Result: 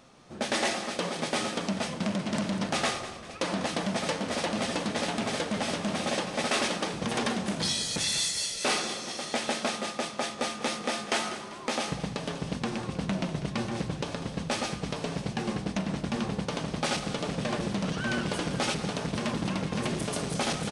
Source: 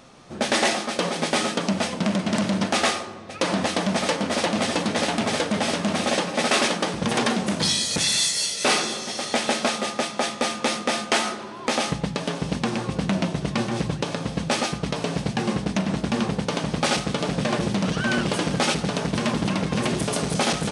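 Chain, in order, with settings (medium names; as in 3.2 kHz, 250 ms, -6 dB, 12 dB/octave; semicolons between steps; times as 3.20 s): frequency-shifting echo 196 ms, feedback 47%, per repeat -38 Hz, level -13 dB; trim -7 dB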